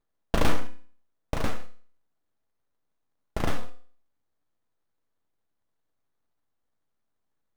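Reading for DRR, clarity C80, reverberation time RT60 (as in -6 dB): 7.0 dB, 16.5 dB, 0.50 s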